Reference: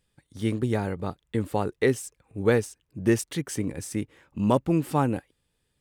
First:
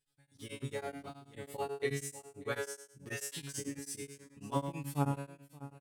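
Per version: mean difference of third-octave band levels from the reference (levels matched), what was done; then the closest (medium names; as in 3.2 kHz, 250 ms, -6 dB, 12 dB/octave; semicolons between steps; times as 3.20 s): 9.5 dB: treble shelf 2.2 kHz +8.5 dB; feedback comb 140 Hz, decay 0.62 s, harmonics all, mix 100%; delay 590 ms -17 dB; tremolo of two beating tones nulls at 9.2 Hz; trim +4.5 dB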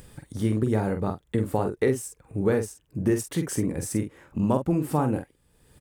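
4.0 dB: in parallel at -0.5 dB: upward compressor, threshold -26 dBFS; on the sum: peaking EQ 3.4 kHz -8 dB 1.8 oct; compression 4:1, threshold -18 dBFS, peak gain reduction 7 dB; doubling 46 ms -7 dB; trim -2 dB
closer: second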